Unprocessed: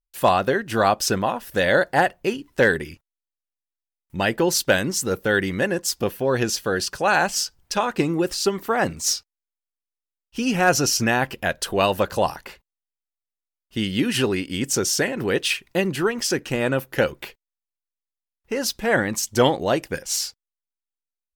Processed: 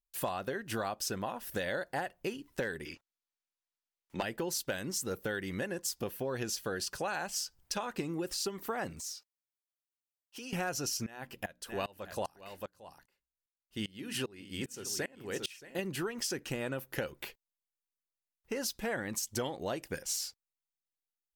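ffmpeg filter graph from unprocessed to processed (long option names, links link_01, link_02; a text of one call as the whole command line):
ffmpeg -i in.wav -filter_complex "[0:a]asettb=1/sr,asplit=3[link_01][link_02][link_03];[link_01]atrim=end=2.854[link_04];[link_02]atrim=start=2.85:end=4.23,asetpts=PTS-STARTPTS,afade=type=in:duration=0.004:curve=qsin,afade=type=out:start_time=1.376:duration=0.004:curve=qsin,acrossover=split=260 6900:gain=0.178 1 0.141[link_05][link_06][link_07];[link_05][link_06][link_07]amix=inputs=3:normalize=0,acontrast=84,aeval=exprs='0.398*(abs(mod(val(0)/0.398+3,4)-2)-1)':channel_layout=same[link_08];[link_03]atrim=start=4.226[link_09];[link_04][link_08]acrossfade=duration=0.004:curve1=hsin:curve2=qsin[link_10];[link_10][link_09]acrossfade=duration=0.004:curve1=qsin:curve2=hsin,asettb=1/sr,asplit=3[link_11][link_12][link_13];[link_11]atrim=end=9.004[link_14];[link_12]atrim=start=9:end=10.53,asetpts=PTS-STARTPTS,afade=type=in:duration=0.004:curve=qsin,afade=type=out:start_time=1.526:duration=0.004:curve=qsin,highpass=360,acompressor=threshold=-36dB:ratio=4:attack=3.2:release=140:knee=1:detection=peak[link_15];[link_13]atrim=start=10.526[link_16];[link_14][link_15]acrossfade=duration=0.004:curve1=hsin:curve2=qsin[link_17];[link_17][link_16]acrossfade=duration=0.004:curve1=qsin:curve2=hsin,asettb=1/sr,asplit=3[link_18][link_19][link_20];[link_18]atrim=end=11.064[link_21];[link_19]atrim=start=11.06:end=15.79,asetpts=PTS-STARTPTS,afade=type=in:duration=0.004:curve=qsin,afade=type=out:start_time=4.726:duration=0.004:curve=qsin,bandreject=frequency=60:width_type=h:width=6,bandreject=frequency=120:width_type=h:width=6,bandreject=frequency=180:width_type=h:width=6,bandreject=frequency=240:width_type=h:width=6,bandreject=frequency=300:width_type=h:width=6,aecho=1:1:625:0.266,atrim=end_sample=208593,aeval=exprs='val(0)*pow(10,-24*if(lt(mod(-2.5*n/s,1),2*abs(-2.5)/1000),1-mod(-2.5*n/s,1)/(2*abs(-2.5)/1000),(mod(-2.5*n/s,1)-2*abs(-2.5)/1000)/(1-2*abs(-2.5)/1000))/20)':channel_layout=same[link_22];[link_20]atrim=start=15.786[link_23];[link_21][link_22]acrossfade=duration=0.004:curve1=hsin:curve2=qsin[link_24];[link_24][link_23]acrossfade=duration=0.004:curve1=qsin:curve2=hsin,highshelf=frequency=6700:gain=6,acompressor=threshold=-25dB:ratio=6,volume=-7.5dB" out.wav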